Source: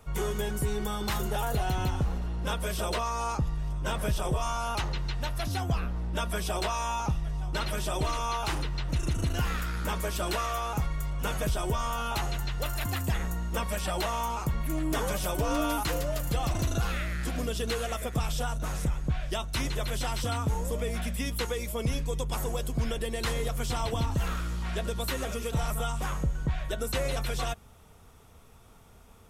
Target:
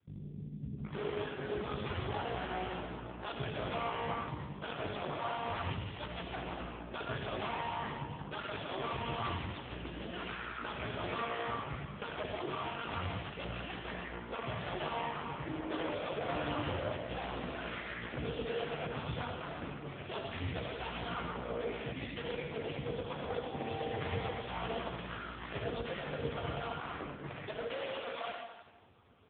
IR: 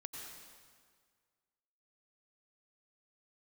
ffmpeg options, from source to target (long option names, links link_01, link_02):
-filter_complex "[0:a]asplit=3[link_01][link_02][link_03];[link_01]afade=type=out:start_time=11.16:duration=0.02[link_04];[link_02]highpass=68,afade=type=in:start_time=11.16:duration=0.02,afade=type=out:start_time=11.56:duration=0.02[link_05];[link_03]afade=type=in:start_time=11.56:duration=0.02[link_06];[link_04][link_05][link_06]amix=inputs=3:normalize=0,adynamicequalizer=threshold=0.00631:dfrequency=190:dqfactor=1.2:tfrequency=190:tqfactor=1.2:attack=5:release=100:ratio=0.375:range=1.5:mode=cutabove:tftype=bell,aeval=exprs='0.119*(cos(1*acos(clip(val(0)/0.119,-1,1)))-cos(1*PI/2))+0.00168*(cos(2*acos(clip(val(0)/0.119,-1,1)))-cos(2*PI/2))+0.000841*(cos(4*acos(clip(val(0)/0.119,-1,1)))-cos(4*PI/2))+0.00119*(cos(5*acos(clip(val(0)/0.119,-1,1)))-cos(5*PI/2))+0.0237*(cos(8*acos(clip(val(0)/0.119,-1,1)))-cos(8*PI/2))':channel_layout=same,asettb=1/sr,asplit=3[link_07][link_08][link_09];[link_07]atrim=end=22.504[link_10];[link_08]atrim=start=22.5:end=23.6,asetpts=PTS-STARTPTS,afade=type=in:duration=0.004:curve=qsin,afade=type=out:start_time=1.096:duration=0.004:curve=qsin,aeval=exprs='val(0)+0.0126*sin(2*PI*780*n/s)':channel_layout=same[link_11];[link_09]atrim=start=23.596[link_12];[link_10][link_11]acrossfade=duration=0.004:curve1=hsin:curve2=qsin[link_13];[link_13][link_12]acrossfade=duration=0.004:curve1=qsin:curve2=hsin,acrusher=bits=10:mix=0:aa=0.000001,acrossover=split=210[link_14][link_15];[link_15]adelay=770[link_16];[link_14][link_16]amix=inputs=2:normalize=0[link_17];[1:a]atrim=start_sample=2205,asetrate=70560,aresample=44100[link_18];[link_17][link_18]afir=irnorm=-1:irlink=0,volume=4.5dB" -ar 8000 -c:a libopencore_amrnb -b:a 5150